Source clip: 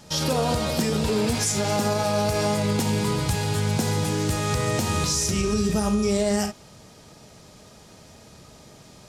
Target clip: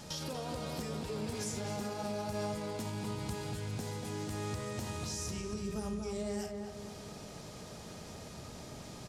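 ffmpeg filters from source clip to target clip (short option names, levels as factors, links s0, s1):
-filter_complex "[0:a]acompressor=threshold=0.00631:ratio=3,asplit=2[s0][s1];[s1]adelay=240,lowpass=f=1600:p=1,volume=0.708,asplit=2[s2][s3];[s3]adelay=240,lowpass=f=1600:p=1,volume=0.54,asplit=2[s4][s5];[s5]adelay=240,lowpass=f=1600:p=1,volume=0.54,asplit=2[s6][s7];[s7]adelay=240,lowpass=f=1600:p=1,volume=0.54,asplit=2[s8][s9];[s9]adelay=240,lowpass=f=1600:p=1,volume=0.54,asplit=2[s10][s11];[s11]adelay=240,lowpass=f=1600:p=1,volume=0.54,asplit=2[s12][s13];[s13]adelay=240,lowpass=f=1600:p=1,volume=0.54[s14];[s2][s4][s6][s8][s10][s12][s14]amix=inputs=7:normalize=0[s15];[s0][s15]amix=inputs=2:normalize=0"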